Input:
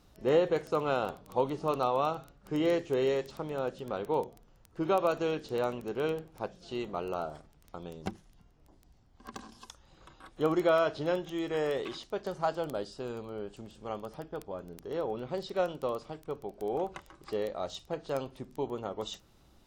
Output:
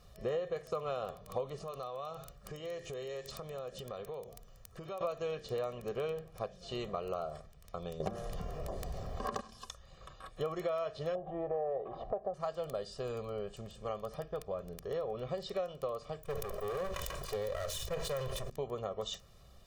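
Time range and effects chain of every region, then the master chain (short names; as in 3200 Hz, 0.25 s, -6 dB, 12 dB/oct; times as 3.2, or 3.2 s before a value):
1.56–5.01 high shelf 4400 Hz +8 dB + compressor 5:1, threshold -42 dBFS
8–9.41 bell 500 Hz +11 dB 2.5 oct + de-hum 117 Hz, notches 14 + fast leveller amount 50%
11.15–12.34 synth low-pass 760 Hz, resonance Q 5.8 + upward compressor, threshold -32 dBFS
16.23–18.5 minimum comb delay 2 ms + high shelf 7900 Hz +11 dB + sustainer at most 31 dB/s
whole clip: comb 1.7 ms, depth 80%; compressor 5:1, threshold -34 dBFS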